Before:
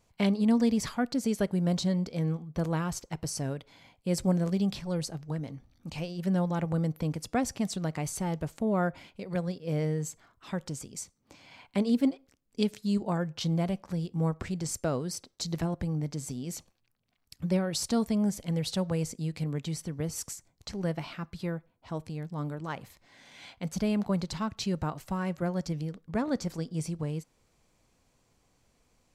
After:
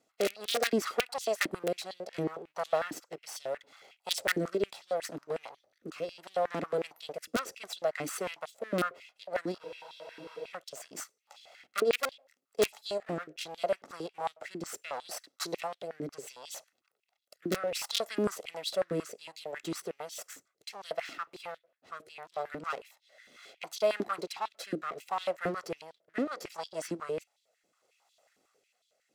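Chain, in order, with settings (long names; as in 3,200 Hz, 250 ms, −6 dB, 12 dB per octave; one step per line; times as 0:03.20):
lower of the sound and its delayed copy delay 1.5 ms
wrap-around overflow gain 19.5 dB
rotating-speaker cabinet horn 0.7 Hz
frozen spectrum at 0:09.63, 0.88 s
high-pass on a step sequencer 11 Hz 300–3,500 Hz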